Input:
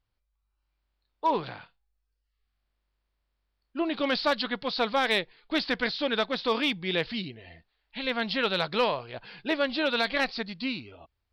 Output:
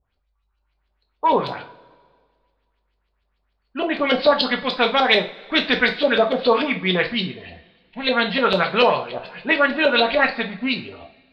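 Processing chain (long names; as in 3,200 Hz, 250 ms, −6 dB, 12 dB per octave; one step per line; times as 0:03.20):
auto-filter low-pass saw up 6.8 Hz 460–4,700 Hz
coupled-rooms reverb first 0.32 s, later 1.8 s, from −22 dB, DRR 2.5 dB
level +5.5 dB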